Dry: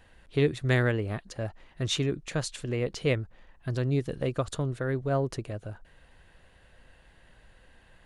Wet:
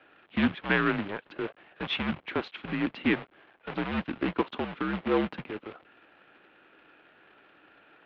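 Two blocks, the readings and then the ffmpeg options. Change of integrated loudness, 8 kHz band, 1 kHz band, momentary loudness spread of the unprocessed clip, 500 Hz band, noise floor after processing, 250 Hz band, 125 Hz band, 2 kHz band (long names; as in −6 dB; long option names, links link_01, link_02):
−0.5 dB, below −30 dB, +5.5 dB, 13 LU, −3.5 dB, −63 dBFS, +3.5 dB, −11.0 dB, +4.0 dB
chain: -af "acrusher=bits=2:mode=log:mix=0:aa=0.000001,highpass=frequency=410:width_type=q:width=0.5412,highpass=frequency=410:width_type=q:width=1.307,lowpass=frequency=3400:width_type=q:width=0.5176,lowpass=frequency=3400:width_type=q:width=0.7071,lowpass=frequency=3400:width_type=q:width=1.932,afreqshift=-200,volume=3.5dB"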